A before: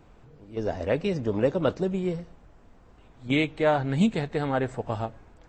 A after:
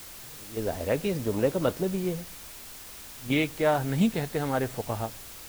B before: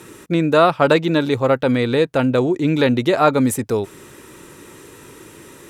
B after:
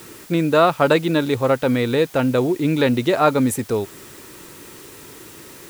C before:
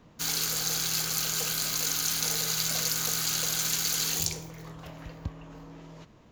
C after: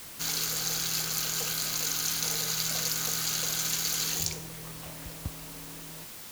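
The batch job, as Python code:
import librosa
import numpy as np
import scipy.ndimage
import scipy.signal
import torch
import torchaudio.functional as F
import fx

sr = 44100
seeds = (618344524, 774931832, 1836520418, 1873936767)

y = fx.dmg_noise_colour(x, sr, seeds[0], colour='white', level_db=-43.0)
y = F.gain(torch.from_numpy(y), -1.5).numpy()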